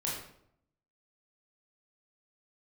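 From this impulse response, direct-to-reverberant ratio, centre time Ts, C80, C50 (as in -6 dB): -5.0 dB, 50 ms, 6.0 dB, 3.0 dB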